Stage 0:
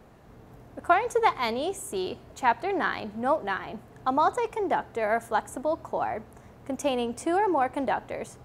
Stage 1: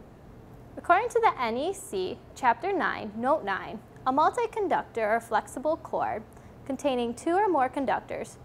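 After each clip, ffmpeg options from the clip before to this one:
-filter_complex "[0:a]acrossover=split=570|2500[a][b][c];[a]acompressor=mode=upward:threshold=-43dB:ratio=2.5[d];[c]alimiter=level_in=8dB:limit=-24dB:level=0:latency=1:release=385,volume=-8dB[e];[d][b][e]amix=inputs=3:normalize=0"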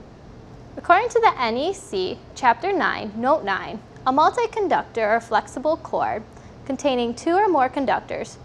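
-af "lowpass=f=5.4k:t=q:w=2.5,volume=6dB"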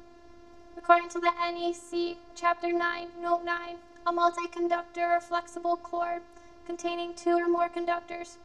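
-af "afftfilt=real='hypot(re,im)*cos(PI*b)':imag='0':win_size=512:overlap=0.75,volume=-4.5dB"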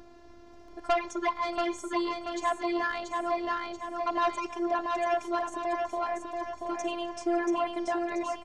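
-af "asoftclip=type=tanh:threshold=-19.5dB,aecho=1:1:683|1366|2049|2732|3415|4098:0.631|0.297|0.139|0.0655|0.0308|0.0145"

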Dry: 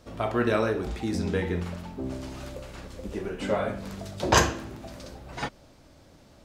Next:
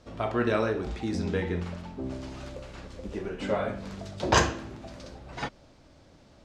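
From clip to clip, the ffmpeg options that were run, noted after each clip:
-af "lowpass=6.9k,volume=-1.5dB"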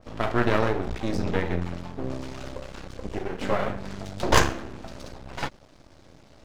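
-af "aeval=exprs='max(val(0),0)':c=same,adynamicequalizer=threshold=0.00355:dfrequency=2600:dqfactor=0.7:tfrequency=2600:tqfactor=0.7:attack=5:release=100:ratio=0.375:range=2.5:mode=cutabove:tftype=highshelf,volume=7dB"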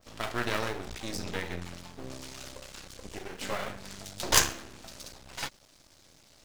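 -af "crystalizer=i=7.5:c=0,volume=-11.5dB"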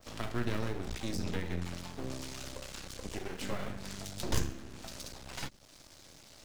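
-filter_complex "[0:a]acrossover=split=330[a][b];[b]acompressor=threshold=-46dB:ratio=3[c];[a][c]amix=inputs=2:normalize=0,volume=3.5dB"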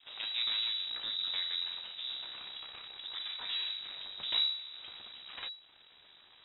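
-af "lowpass=f=3.3k:t=q:w=0.5098,lowpass=f=3.3k:t=q:w=0.6013,lowpass=f=3.3k:t=q:w=0.9,lowpass=f=3.3k:t=q:w=2.563,afreqshift=-3900,volume=-1.5dB"

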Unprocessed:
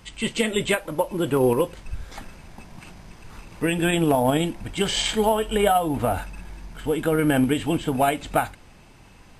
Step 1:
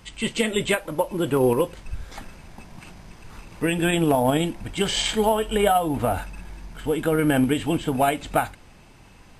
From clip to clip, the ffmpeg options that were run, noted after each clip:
-af anull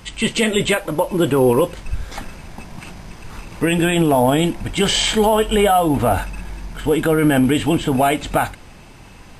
-af "alimiter=limit=-15dB:level=0:latency=1:release=18,volume=8dB"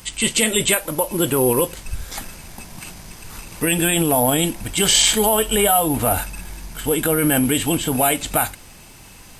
-af "aemphasis=mode=production:type=75fm,volume=-3dB"

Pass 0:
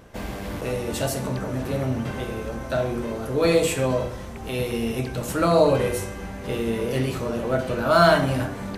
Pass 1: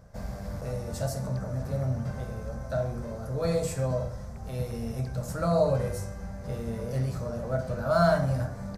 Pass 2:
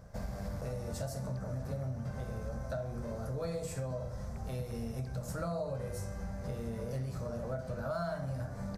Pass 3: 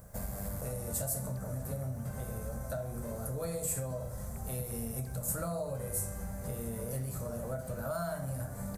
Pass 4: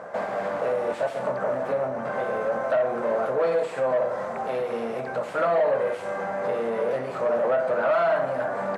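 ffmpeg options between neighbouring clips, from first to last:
-af "firequalizer=gain_entry='entry(160,0);entry(320,-18);entry(580,-3);entry(920,-10);entry(1400,-8);entry(2900,-21);entry(4900,-5);entry(9900,-10)':delay=0.05:min_phase=1,volume=-1dB"
-af "acompressor=threshold=-35dB:ratio=5"
-af "aexciter=amount=7:drive=6.4:freq=7.6k"
-filter_complex "[0:a]asplit=2[a][b];[b]highpass=f=720:p=1,volume=26dB,asoftclip=type=tanh:threshold=-19dB[c];[a][c]amix=inputs=2:normalize=0,lowpass=f=1.1k:p=1,volume=-6dB,highpass=370,lowpass=2.9k,volume=8dB"

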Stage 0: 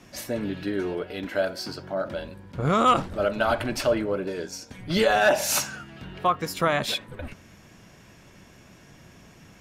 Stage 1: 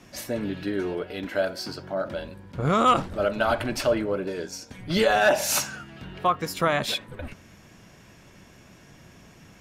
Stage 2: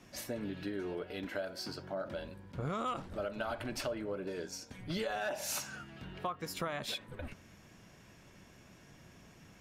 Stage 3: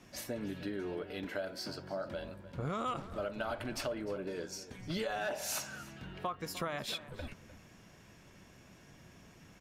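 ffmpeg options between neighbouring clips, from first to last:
-af anull
-af "acompressor=threshold=-28dB:ratio=4,volume=-7dB"
-filter_complex "[0:a]asplit=2[a][b];[b]adelay=303.2,volume=-15dB,highshelf=f=4k:g=-6.82[c];[a][c]amix=inputs=2:normalize=0"

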